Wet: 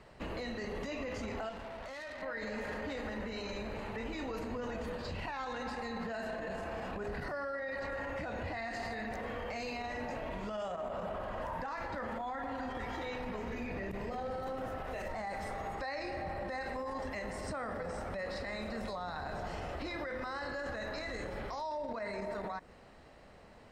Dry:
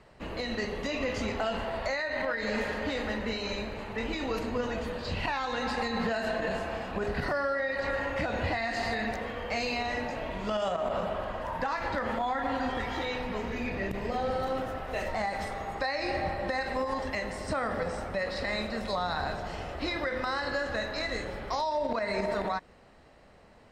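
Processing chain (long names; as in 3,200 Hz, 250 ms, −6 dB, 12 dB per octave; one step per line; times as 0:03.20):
dynamic equaliser 3,600 Hz, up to −5 dB, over −49 dBFS, Q 1.1
brickwall limiter −31.5 dBFS, peak gain reduction 11.5 dB
0:01.49–0:02.22: tube saturation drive 41 dB, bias 0.65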